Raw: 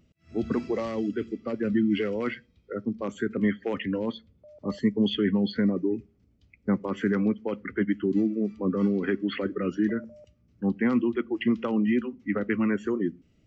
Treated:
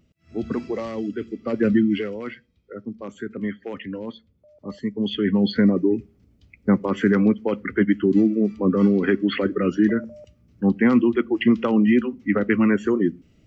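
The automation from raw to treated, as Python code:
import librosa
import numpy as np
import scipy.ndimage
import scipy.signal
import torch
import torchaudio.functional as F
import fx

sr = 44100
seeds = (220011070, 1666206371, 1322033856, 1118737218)

y = fx.gain(x, sr, db=fx.line((1.31, 1.0), (1.64, 9.0), (2.2, -3.0), (4.89, -3.0), (5.49, 7.0)))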